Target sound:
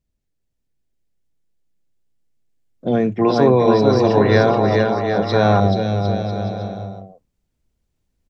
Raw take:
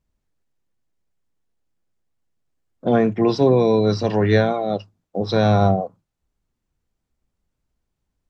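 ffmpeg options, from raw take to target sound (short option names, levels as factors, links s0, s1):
-af "aecho=1:1:430|752.5|994.4|1176|1312:0.631|0.398|0.251|0.158|0.1,dynaudnorm=f=780:g=5:m=2.66,asetnsamples=n=441:p=0,asendcmd='3.19 equalizer g 6;5.6 equalizer g -6',equalizer=f=1100:t=o:w=1.2:g=-8.5,volume=0.841"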